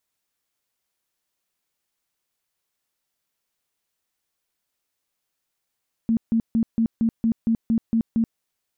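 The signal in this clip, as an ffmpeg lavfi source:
ffmpeg -f lavfi -i "aevalsrc='0.15*sin(2*PI*227*mod(t,0.23))*lt(mod(t,0.23),18/227)':duration=2.3:sample_rate=44100" out.wav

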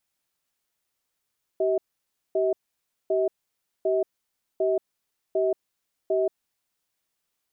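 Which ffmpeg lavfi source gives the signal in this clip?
ffmpeg -f lavfi -i "aevalsrc='0.0708*(sin(2*PI*384*t)+sin(2*PI*641*t))*clip(min(mod(t,0.75),0.18-mod(t,0.75))/0.005,0,1)':duration=5.16:sample_rate=44100" out.wav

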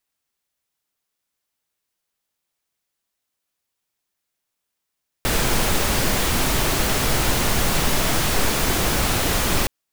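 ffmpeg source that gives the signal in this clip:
ffmpeg -f lavfi -i "anoisesrc=color=pink:amplitude=0.543:duration=4.42:sample_rate=44100:seed=1" out.wav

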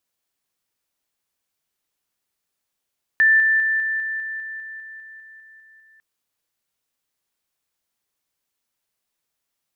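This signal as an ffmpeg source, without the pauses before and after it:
ffmpeg -f lavfi -i "aevalsrc='pow(10,(-11.5-3*floor(t/0.2))/20)*sin(2*PI*1770*t)':duration=2.8:sample_rate=44100" out.wav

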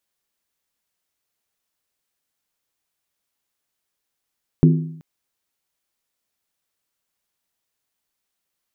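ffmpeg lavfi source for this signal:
ffmpeg -f lavfi -i "aevalsrc='0.422*pow(10,-3*t/0.7)*sin(2*PI*160*t)+0.224*pow(10,-3*t/0.554)*sin(2*PI*255*t)+0.119*pow(10,-3*t/0.479)*sin(2*PI*341.8*t)+0.0631*pow(10,-3*t/0.462)*sin(2*PI*367.4*t)+0.0335*pow(10,-3*t/0.43)*sin(2*PI*424.5*t)':duration=0.38:sample_rate=44100" out.wav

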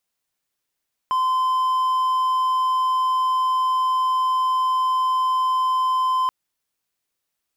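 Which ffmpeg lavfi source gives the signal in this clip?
ffmpeg -f lavfi -i "aevalsrc='0.168*(1-4*abs(mod(1030*t+0.25,1)-0.5))':duration=5.18:sample_rate=44100" out.wav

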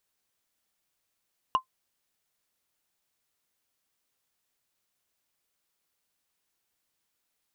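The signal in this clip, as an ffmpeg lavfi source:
ffmpeg -f lavfi -i "aevalsrc='0.178*pow(10,-3*t/0.1)*sin(2*PI*1040*t)+0.0501*pow(10,-3*t/0.03)*sin(2*PI*2867.3*t)+0.0141*pow(10,-3*t/0.013)*sin(2*PI*5620.2*t)+0.00398*pow(10,-3*t/0.007)*sin(2*PI*9290.3*t)+0.00112*pow(10,-3*t/0.004)*sin(2*PI*13873.6*t)':duration=0.45:sample_rate=44100" out.wav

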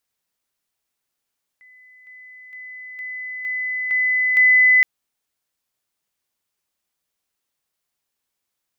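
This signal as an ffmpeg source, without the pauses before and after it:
ffmpeg -f lavfi -i "aevalsrc='pow(10,(-46+6*floor(t/0.46))/20)*sin(2*PI*2010*t)':duration=3.22:sample_rate=44100" out.wav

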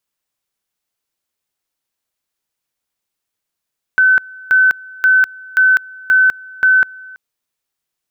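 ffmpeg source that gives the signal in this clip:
ffmpeg -f lavfi -i "aevalsrc='pow(10,(-7-24.5*gte(mod(t,0.53),0.2))/20)*sin(2*PI*1520*t)':duration=3.18:sample_rate=44100" out.wav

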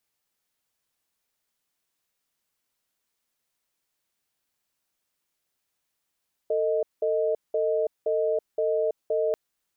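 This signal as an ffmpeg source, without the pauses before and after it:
ffmpeg -f lavfi -i "aevalsrc='0.0596*(sin(2*PI*448*t)+sin(2*PI*623*t))*clip(min(mod(t,0.52),0.33-mod(t,0.52))/0.005,0,1)':duration=2.84:sample_rate=44100" out.wav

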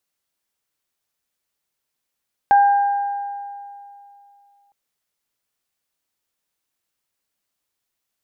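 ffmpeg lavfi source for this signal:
ffmpeg -f lavfi -i "aevalsrc='0.376*pow(10,-3*t/2.68)*sin(2*PI*807*t)+0.075*pow(10,-3*t/1.89)*sin(2*PI*1590*t)':duration=2.21:sample_rate=44100" out.wav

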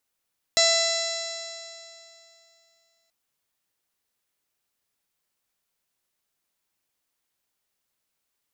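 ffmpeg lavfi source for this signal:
ffmpeg -f lavfi -i "aevalsrc='0.0794*pow(10,-3*t/2.78)*sin(2*PI*665.2*t)+0.02*pow(10,-3*t/2.78)*sin(2*PI*1331.6*t)+0.0531*pow(10,-3*t/2.78)*sin(2*PI*2000.38*t)+0.0224*pow(10,-3*t/2.78)*sin(2*PI*2672.74*t)+0.0178*pow(10,-3*t/2.78)*sin(2*PI*3349.84*t)+0.1*pow(10,-3*t/2.78)*sin(2*PI*4032.86*t)+0.0335*pow(10,-3*t/2.78)*sin(2*PI*4722.93*t)+0.0631*pow(10,-3*t/2.78)*sin(2*PI*5421.18*t)+0.0316*pow(10,-3*t/2.78)*sin(2*PI*6128.71*t)+0.0562*pow(10,-3*t/2.78)*sin(2*PI*6846.59*t)+0.0316*pow(10,-3*t/2.78)*sin(2*PI*7575.88*t)+0.00794*pow(10,-3*t/2.78)*sin(2*PI*8317.59*t)':duration=2.53:sample_rate=44100" out.wav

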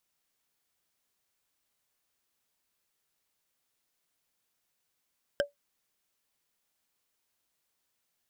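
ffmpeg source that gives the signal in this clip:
ffmpeg -f lavfi -i "aevalsrc='0.1*pow(10,-3*t/0.14)*sin(2*PI*573*t)+0.0708*pow(10,-3*t/0.041)*sin(2*PI*1579.8*t)+0.0501*pow(10,-3*t/0.018)*sin(2*PI*3096.5*t)+0.0355*pow(10,-3*t/0.01)*sin(2*PI*5118.6*t)+0.0251*pow(10,-3*t/0.006)*sin(2*PI*7643.8*t)':duration=0.45:sample_rate=44100" out.wav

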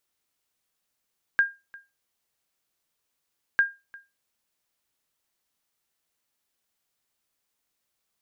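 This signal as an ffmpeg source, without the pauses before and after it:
ffmpeg -f lavfi -i "aevalsrc='0.237*(sin(2*PI*1610*mod(t,2.2))*exp(-6.91*mod(t,2.2)/0.24)+0.0631*sin(2*PI*1610*max(mod(t,2.2)-0.35,0))*exp(-6.91*max(mod(t,2.2)-0.35,0)/0.24))':duration=4.4:sample_rate=44100" out.wav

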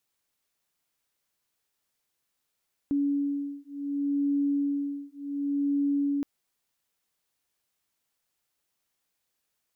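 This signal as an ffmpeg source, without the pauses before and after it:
ffmpeg -f lavfi -i "aevalsrc='0.0376*(sin(2*PI*283*t)+sin(2*PI*283.68*t))':duration=3.32:sample_rate=44100" out.wav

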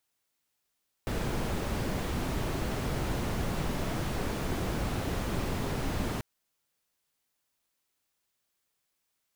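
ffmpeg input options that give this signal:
ffmpeg -f lavfi -i "anoisesrc=color=brown:amplitude=0.132:duration=5.14:sample_rate=44100:seed=1" out.wav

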